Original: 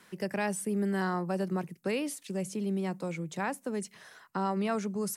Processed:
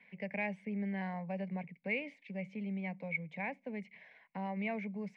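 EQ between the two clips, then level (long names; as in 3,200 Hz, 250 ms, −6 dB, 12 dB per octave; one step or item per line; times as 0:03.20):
transistor ladder low-pass 2,300 Hz, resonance 85%
phaser with its sweep stopped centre 350 Hz, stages 6
+6.5 dB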